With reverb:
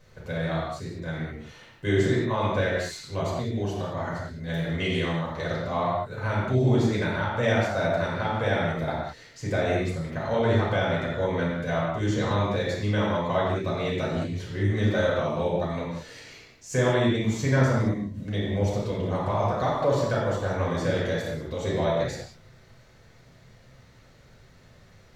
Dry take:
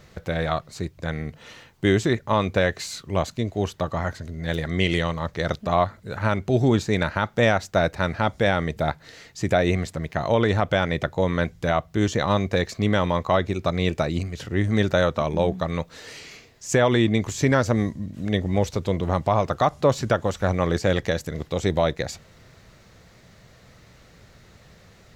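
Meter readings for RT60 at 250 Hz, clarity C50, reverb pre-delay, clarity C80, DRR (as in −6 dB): can't be measured, 0.0 dB, 4 ms, 2.0 dB, −6.5 dB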